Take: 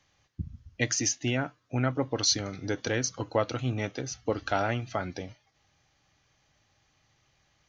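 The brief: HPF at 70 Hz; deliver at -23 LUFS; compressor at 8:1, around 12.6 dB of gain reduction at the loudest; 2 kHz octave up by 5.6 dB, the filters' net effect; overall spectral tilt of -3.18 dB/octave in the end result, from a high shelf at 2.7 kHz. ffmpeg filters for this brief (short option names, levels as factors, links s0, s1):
-af "highpass=70,equalizer=f=2000:t=o:g=4.5,highshelf=f=2700:g=6,acompressor=threshold=0.0355:ratio=8,volume=3.76"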